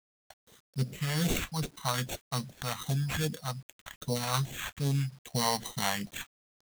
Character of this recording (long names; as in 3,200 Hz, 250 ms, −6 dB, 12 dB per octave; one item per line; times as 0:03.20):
aliases and images of a low sample rate 5,000 Hz, jitter 0%
phaser sweep stages 2, 2.5 Hz, lowest notch 340–1,300 Hz
a quantiser's noise floor 10 bits, dither none